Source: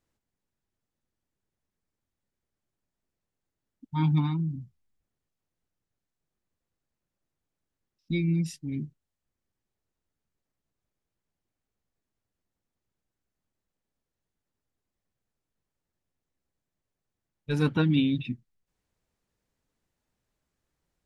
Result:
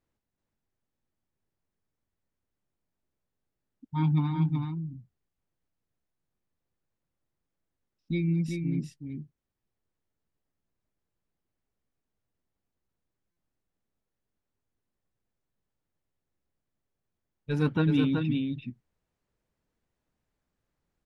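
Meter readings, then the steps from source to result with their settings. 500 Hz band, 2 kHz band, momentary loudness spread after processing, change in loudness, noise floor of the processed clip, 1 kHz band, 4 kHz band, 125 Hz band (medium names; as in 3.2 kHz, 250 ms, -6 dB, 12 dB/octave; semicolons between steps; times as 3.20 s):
0.0 dB, -1.5 dB, 16 LU, -1.0 dB, under -85 dBFS, -0.5 dB, -4.0 dB, 0.0 dB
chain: treble shelf 3.5 kHz -8 dB; delay 377 ms -4.5 dB; buffer glitch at 13.31 s, samples 256, times 9; trim -1 dB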